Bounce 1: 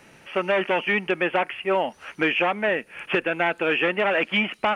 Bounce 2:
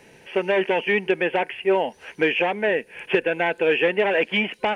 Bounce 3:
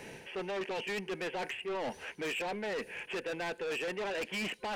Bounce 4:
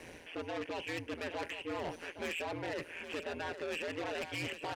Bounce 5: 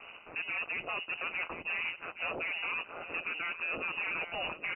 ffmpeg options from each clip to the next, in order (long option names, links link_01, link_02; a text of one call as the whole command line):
ffmpeg -i in.wav -af "superequalizer=7b=2:10b=0.355" out.wav
ffmpeg -i in.wav -af "areverse,acompressor=threshold=-30dB:ratio=6,areverse,asoftclip=type=tanh:threshold=-36.5dB,volume=3.5dB" out.wav
ffmpeg -i in.wav -filter_complex "[0:a]asplit=2[link_01][link_02];[link_02]aecho=0:1:817:0.316[link_03];[link_01][link_03]amix=inputs=2:normalize=0,aeval=exprs='val(0)*sin(2*PI*84*n/s)':channel_layout=same" out.wav
ffmpeg -i in.wav -filter_complex "[0:a]asplit=2[link_01][link_02];[link_02]aeval=exprs='val(0)*gte(abs(val(0)),0.00562)':channel_layout=same,volume=-6.5dB[link_03];[link_01][link_03]amix=inputs=2:normalize=0,lowpass=frequency=2600:width_type=q:width=0.5098,lowpass=frequency=2600:width_type=q:width=0.6013,lowpass=frequency=2600:width_type=q:width=0.9,lowpass=frequency=2600:width_type=q:width=2.563,afreqshift=-3000" out.wav